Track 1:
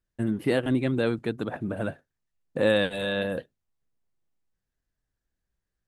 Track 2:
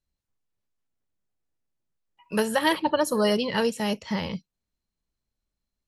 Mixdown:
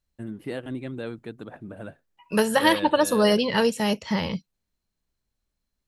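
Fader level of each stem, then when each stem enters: -8.5 dB, +3.0 dB; 0.00 s, 0.00 s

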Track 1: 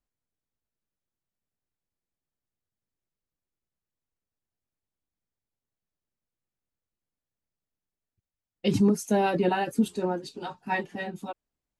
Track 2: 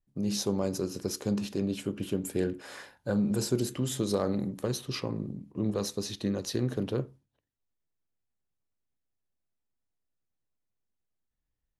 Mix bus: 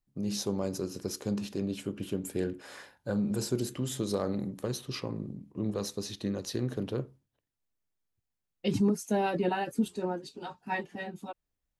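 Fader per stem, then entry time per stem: -4.5 dB, -2.5 dB; 0.00 s, 0.00 s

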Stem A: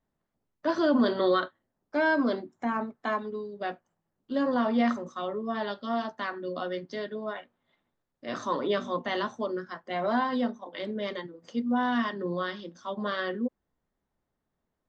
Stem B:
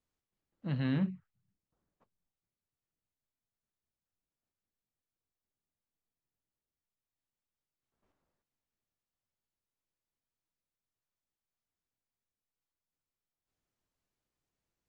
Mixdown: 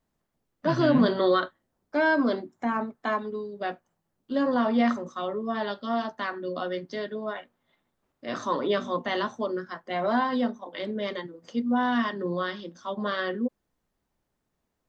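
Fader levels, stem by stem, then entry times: +2.0 dB, +2.5 dB; 0.00 s, 0.00 s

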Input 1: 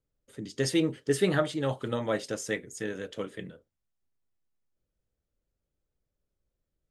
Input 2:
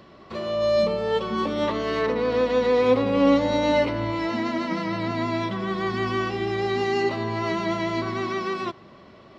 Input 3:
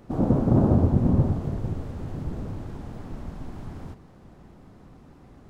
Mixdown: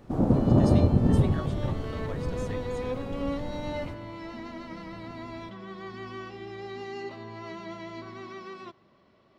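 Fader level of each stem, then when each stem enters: -13.0 dB, -14.0 dB, -1.0 dB; 0.00 s, 0.00 s, 0.00 s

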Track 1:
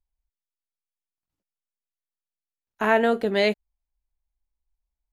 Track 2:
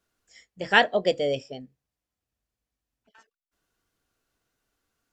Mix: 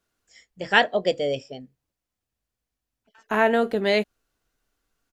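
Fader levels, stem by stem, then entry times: 0.0 dB, +0.5 dB; 0.50 s, 0.00 s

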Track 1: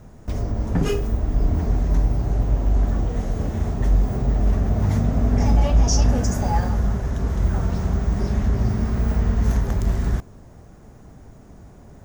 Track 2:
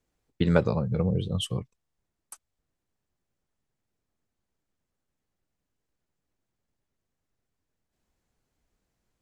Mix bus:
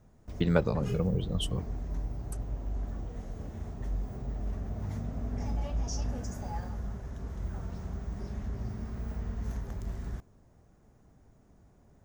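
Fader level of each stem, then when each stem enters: -16.0 dB, -3.5 dB; 0.00 s, 0.00 s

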